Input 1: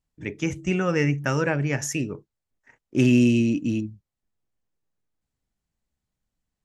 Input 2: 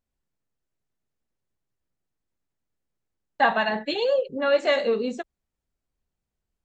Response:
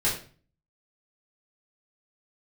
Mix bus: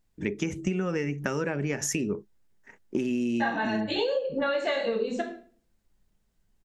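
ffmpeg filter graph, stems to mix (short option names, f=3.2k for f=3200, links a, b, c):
-filter_complex "[0:a]acompressor=threshold=-25dB:ratio=6,equalizer=f=125:t=o:w=0.33:g=-11,equalizer=f=200:t=o:w=0.33:g=9,equalizer=f=400:t=o:w=0.33:g=7,volume=3dB,asplit=2[a][b];[1:a]volume=2.5dB,asplit=2[c][d];[d]volume=-10dB[e];[b]apad=whole_len=297290[f];[c][f]sidechaincompress=threshold=-38dB:ratio=8:attack=16:release=139[g];[2:a]atrim=start_sample=2205[h];[e][h]afir=irnorm=-1:irlink=0[i];[a][g][i]amix=inputs=3:normalize=0,acompressor=threshold=-24dB:ratio=12"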